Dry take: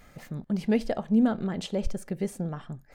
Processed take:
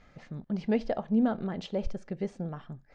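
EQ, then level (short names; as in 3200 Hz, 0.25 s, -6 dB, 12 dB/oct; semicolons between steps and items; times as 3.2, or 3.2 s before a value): LPF 6300 Hz 24 dB/oct; dynamic EQ 740 Hz, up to +4 dB, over -37 dBFS, Q 0.84; air absorption 53 m; -4.0 dB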